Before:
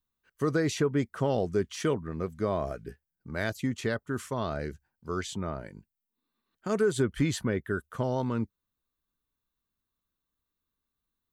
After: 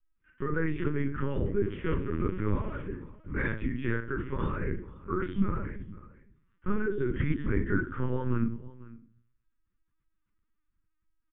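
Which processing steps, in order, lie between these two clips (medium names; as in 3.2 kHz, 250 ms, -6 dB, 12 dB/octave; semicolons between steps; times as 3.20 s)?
3.95–4.66 s: peaking EQ 110 Hz -2.5 dB 0.97 oct; compression 3:1, threshold -31 dBFS, peak gain reduction 8 dB; simulated room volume 33 m³, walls mixed, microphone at 0.97 m; de-esser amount 100%; 1.57–2.87 s: small samples zeroed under -39 dBFS; delay 497 ms -20 dB; LPC vocoder at 8 kHz pitch kept; static phaser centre 1.7 kHz, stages 4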